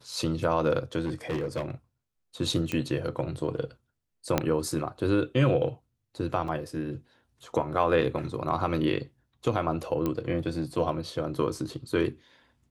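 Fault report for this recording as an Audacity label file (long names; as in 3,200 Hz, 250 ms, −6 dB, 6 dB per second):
1.050000	1.710000	clipping −25.5 dBFS
2.720000	2.720000	click −16 dBFS
4.380000	4.380000	click −8 dBFS
6.480000	6.480000	drop-out 3.5 ms
10.060000	10.060000	click −16 dBFS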